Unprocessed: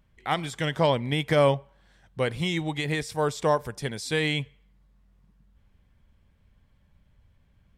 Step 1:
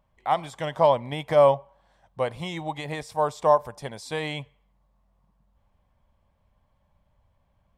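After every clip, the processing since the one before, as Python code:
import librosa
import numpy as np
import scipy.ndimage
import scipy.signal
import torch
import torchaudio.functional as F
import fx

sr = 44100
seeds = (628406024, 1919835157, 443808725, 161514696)

y = fx.band_shelf(x, sr, hz=790.0, db=11.5, octaves=1.3)
y = F.gain(torch.from_numpy(y), -6.0).numpy()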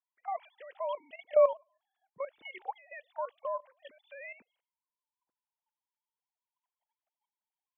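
y = fx.sine_speech(x, sr)
y = fx.level_steps(y, sr, step_db=14)
y = fx.high_shelf(y, sr, hz=2000.0, db=9.0)
y = F.gain(torch.from_numpy(y), -6.0).numpy()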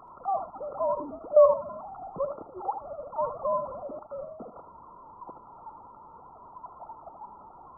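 y = x + 0.5 * 10.0 ** (-37.5 / 20.0) * np.sign(x)
y = fx.brickwall_lowpass(y, sr, high_hz=1400.0)
y = fx.room_early_taps(y, sr, ms=(65, 79), db=(-17.5, -9.5))
y = F.gain(torch.from_numpy(y), 5.0).numpy()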